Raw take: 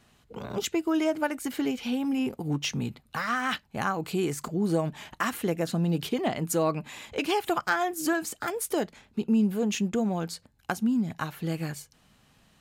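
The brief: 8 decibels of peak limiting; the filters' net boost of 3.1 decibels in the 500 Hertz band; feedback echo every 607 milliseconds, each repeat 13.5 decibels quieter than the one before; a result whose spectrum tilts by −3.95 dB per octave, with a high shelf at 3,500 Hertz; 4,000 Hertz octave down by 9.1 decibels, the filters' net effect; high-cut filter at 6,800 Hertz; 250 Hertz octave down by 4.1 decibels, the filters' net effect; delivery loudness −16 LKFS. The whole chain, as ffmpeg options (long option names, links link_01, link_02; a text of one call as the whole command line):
ffmpeg -i in.wav -af "lowpass=6800,equalizer=frequency=250:width_type=o:gain=-7.5,equalizer=frequency=500:width_type=o:gain=6.5,highshelf=frequency=3500:gain=-8,equalizer=frequency=4000:width_type=o:gain=-7.5,alimiter=limit=-20dB:level=0:latency=1,aecho=1:1:607|1214:0.211|0.0444,volume=15.5dB" out.wav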